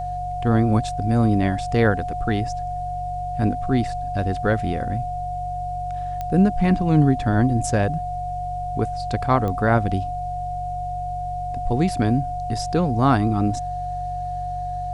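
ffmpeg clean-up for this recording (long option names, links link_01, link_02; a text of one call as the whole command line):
ffmpeg -i in.wav -af "adeclick=threshold=4,bandreject=frequency=47.1:width_type=h:width=4,bandreject=frequency=94.2:width_type=h:width=4,bandreject=frequency=141.3:width_type=h:width=4,bandreject=frequency=720:width=30,agate=range=-21dB:threshold=-20dB" out.wav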